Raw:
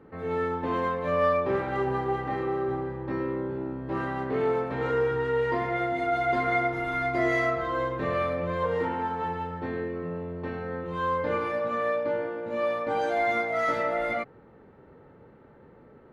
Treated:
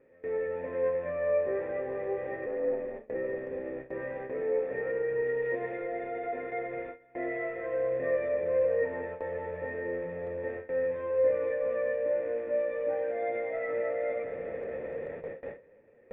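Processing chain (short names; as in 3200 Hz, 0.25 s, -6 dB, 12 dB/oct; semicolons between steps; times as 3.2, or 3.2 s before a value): zero-crossing step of -29 dBFS; in parallel at -2.5 dB: compressor 12:1, threshold -32 dBFS, peak gain reduction 14 dB; on the sum: flange 0.37 Hz, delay 7.5 ms, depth 6.1 ms, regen +44%; 2.46–3.15 ring modulator 110 Hz; air absorption 170 m; on a send: darkening echo 0.209 s, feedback 83%, low-pass 2900 Hz, level -11 dB; 5.26–5.82 on the sum: sample gate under -33 dBFS; vocal tract filter e; gate with hold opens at -33 dBFS; gain +4.5 dB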